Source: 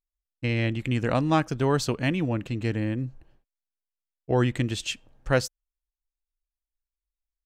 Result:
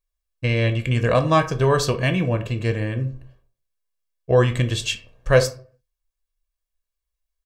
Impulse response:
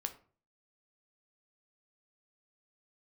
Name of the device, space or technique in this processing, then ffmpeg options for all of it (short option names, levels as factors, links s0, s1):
microphone above a desk: -filter_complex "[0:a]aecho=1:1:1.8:0.6[s0];[1:a]atrim=start_sample=2205[s1];[s0][s1]afir=irnorm=-1:irlink=0,volume=1.88"